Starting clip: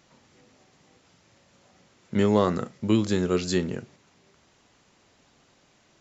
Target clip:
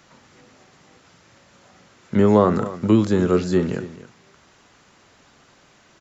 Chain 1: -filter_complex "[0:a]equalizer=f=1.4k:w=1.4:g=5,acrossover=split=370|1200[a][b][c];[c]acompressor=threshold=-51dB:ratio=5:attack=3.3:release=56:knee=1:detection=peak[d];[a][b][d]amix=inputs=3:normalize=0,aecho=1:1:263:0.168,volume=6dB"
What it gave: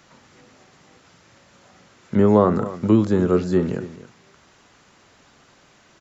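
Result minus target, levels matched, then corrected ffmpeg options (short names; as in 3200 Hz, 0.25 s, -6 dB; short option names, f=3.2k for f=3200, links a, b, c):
compressor: peak gain reduction +6 dB
-filter_complex "[0:a]equalizer=f=1.4k:w=1.4:g=5,acrossover=split=370|1200[a][b][c];[c]acompressor=threshold=-43.5dB:ratio=5:attack=3.3:release=56:knee=1:detection=peak[d];[a][b][d]amix=inputs=3:normalize=0,aecho=1:1:263:0.168,volume=6dB"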